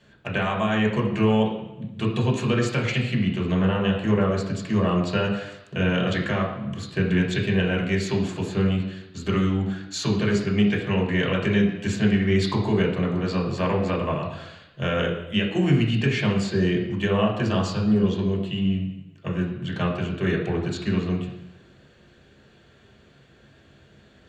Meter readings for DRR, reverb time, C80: -4.5 dB, 0.90 s, 8.0 dB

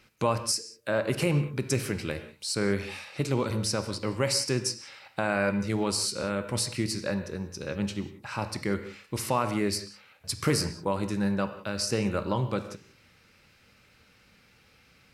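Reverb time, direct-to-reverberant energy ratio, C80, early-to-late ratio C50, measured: no single decay rate, 9.0 dB, 12.0 dB, 10.5 dB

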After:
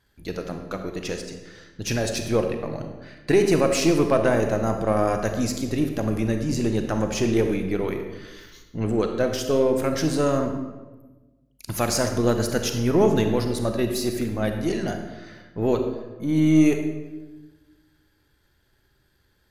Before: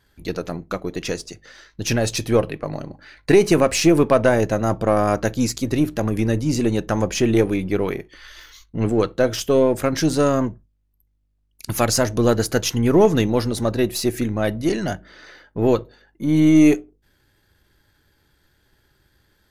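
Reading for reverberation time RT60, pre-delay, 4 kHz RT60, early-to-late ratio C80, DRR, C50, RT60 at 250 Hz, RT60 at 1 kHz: 1.2 s, 33 ms, 0.80 s, 8.0 dB, 5.0 dB, 6.0 dB, 1.5 s, 1.1 s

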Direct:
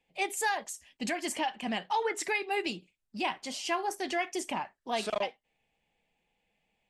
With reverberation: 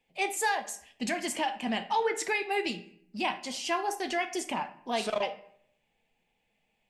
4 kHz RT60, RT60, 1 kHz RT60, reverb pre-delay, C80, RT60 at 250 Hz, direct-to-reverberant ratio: 0.45 s, 0.65 s, 0.60 s, 5 ms, 17.0 dB, 0.80 s, 9.0 dB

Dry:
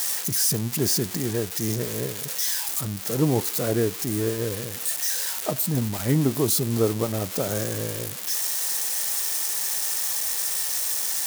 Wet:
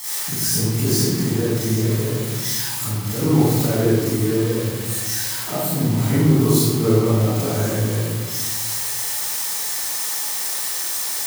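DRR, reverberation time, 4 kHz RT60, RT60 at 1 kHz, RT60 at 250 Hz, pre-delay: -13.0 dB, 1.4 s, 0.85 s, 1.4 s, 1.7 s, 36 ms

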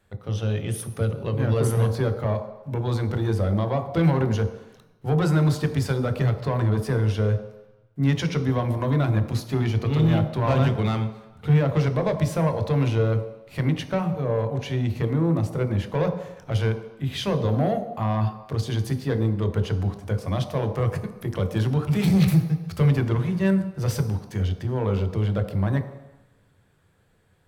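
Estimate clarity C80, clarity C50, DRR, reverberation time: 11.5 dB, 10.0 dB, 6.5 dB, 1.0 s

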